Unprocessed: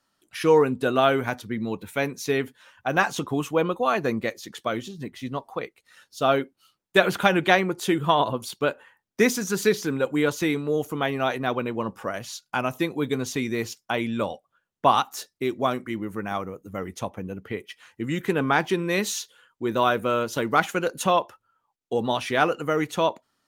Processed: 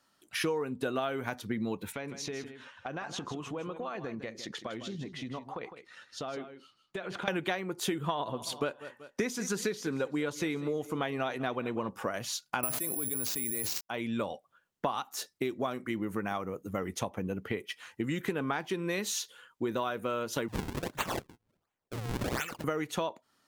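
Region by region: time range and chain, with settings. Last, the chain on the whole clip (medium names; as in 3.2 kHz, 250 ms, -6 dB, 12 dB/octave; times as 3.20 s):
1.92–7.28 s: distance through air 86 m + compression 12:1, threshold -36 dBFS + delay 157 ms -10.5 dB
8.03–11.89 s: low-pass 11 kHz + feedback delay 190 ms, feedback 40%, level -21 dB
12.63–13.81 s: careless resampling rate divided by 4×, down none, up zero stuff + level flattener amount 100%
20.48–22.64 s: FFT filter 120 Hz 0 dB, 200 Hz -20 dB, 970 Hz -24 dB, 1.8 kHz +3 dB + decimation with a swept rate 42×, swing 160% 1.4 Hz
whole clip: bass shelf 67 Hz -7 dB; compression 10:1, threshold -31 dBFS; trim +2 dB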